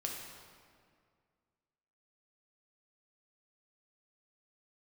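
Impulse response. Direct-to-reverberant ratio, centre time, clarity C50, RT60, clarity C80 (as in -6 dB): -1.0 dB, 76 ms, 2.0 dB, 2.1 s, 3.5 dB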